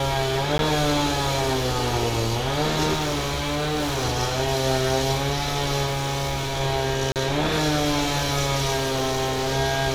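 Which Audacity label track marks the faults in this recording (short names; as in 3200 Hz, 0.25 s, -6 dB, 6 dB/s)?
0.580000	0.590000	gap 12 ms
2.930000	4.050000	clipped -21 dBFS
5.860000	6.610000	clipped -21.5 dBFS
7.120000	7.160000	gap 38 ms
8.760000	9.530000	clipped -20 dBFS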